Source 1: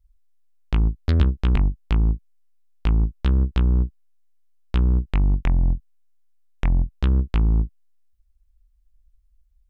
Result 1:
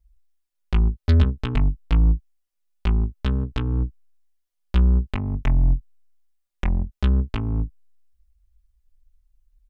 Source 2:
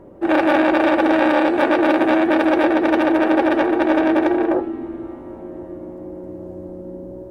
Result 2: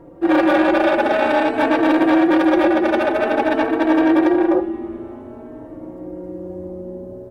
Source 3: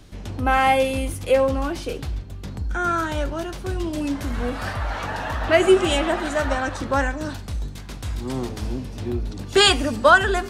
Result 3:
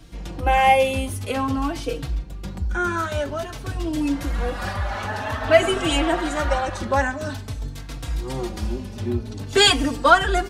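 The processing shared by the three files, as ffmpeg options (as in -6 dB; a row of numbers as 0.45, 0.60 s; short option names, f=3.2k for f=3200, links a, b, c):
-filter_complex "[0:a]asplit=2[a][b];[b]aeval=exprs='clip(val(0),-1,0.316)':c=same,volume=-6dB[c];[a][c]amix=inputs=2:normalize=0,asplit=2[d][e];[e]adelay=3.9,afreqshift=0.5[f];[d][f]amix=inputs=2:normalize=1"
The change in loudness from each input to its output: -0.5, +0.5, 0.0 LU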